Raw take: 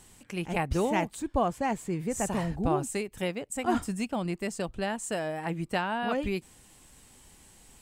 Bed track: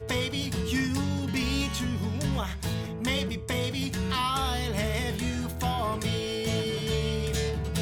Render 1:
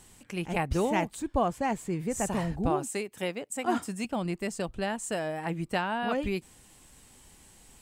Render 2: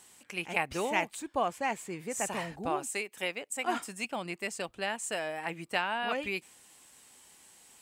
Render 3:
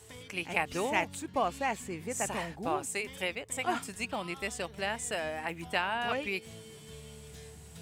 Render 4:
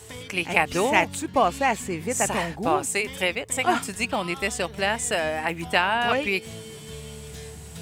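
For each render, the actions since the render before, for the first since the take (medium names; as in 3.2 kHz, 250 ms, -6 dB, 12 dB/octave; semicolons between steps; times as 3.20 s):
2.70–4.05 s: Bessel high-pass 210 Hz
high-pass 660 Hz 6 dB/octave; dynamic bell 2.4 kHz, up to +6 dB, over -51 dBFS, Q 2.3
add bed track -20.5 dB
trim +9.5 dB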